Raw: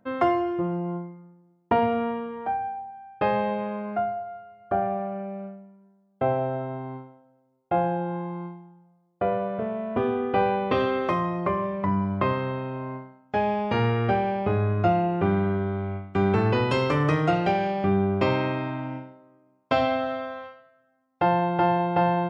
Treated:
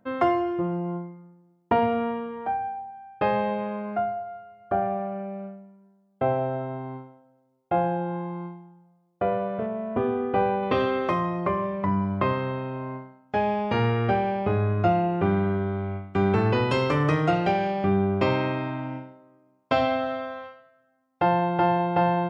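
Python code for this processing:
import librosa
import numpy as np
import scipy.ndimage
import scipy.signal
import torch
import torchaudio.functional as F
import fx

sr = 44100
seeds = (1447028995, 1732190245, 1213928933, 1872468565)

y = fx.high_shelf(x, sr, hz=2800.0, db=-10.0, at=(9.66, 10.63))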